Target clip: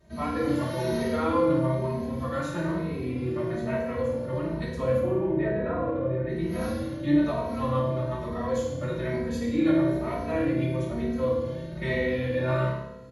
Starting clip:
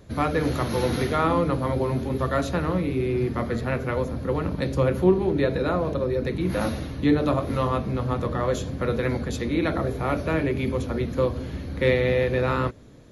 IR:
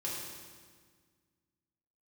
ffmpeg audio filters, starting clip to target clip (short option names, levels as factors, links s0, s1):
-filter_complex "[0:a]asplit=3[s0][s1][s2];[s0]afade=t=out:st=4.98:d=0.02[s3];[s1]lowpass=f=2600:w=0.5412,lowpass=f=2600:w=1.3066,afade=t=in:st=4.98:d=0.02,afade=t=out:st=6.28:d=0.02[s4];[s2]afade=t=in:st=6.28:d=0.02[s5];[s3][s4][s5]amix=inputs=3:normalize=0[s6];[1:a]atrim=start_sample=2205,asetrate=79380,aresample=44100[s7];[s6][s7]afir=irnorm=-1:irlink=0,asplit=2[s8][s9];[s9]adelay=2.8,afreqshift=1.1[s10];[s8][s10]amix=inputs=2:normalize=1"